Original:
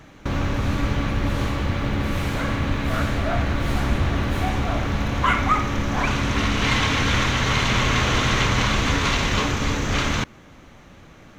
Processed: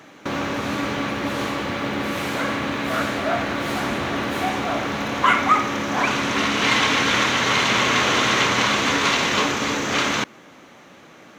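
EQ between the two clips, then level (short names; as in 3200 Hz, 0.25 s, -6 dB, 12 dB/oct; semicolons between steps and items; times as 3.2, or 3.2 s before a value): HPF 250 Hz 12 dB/oct; +3.5 dB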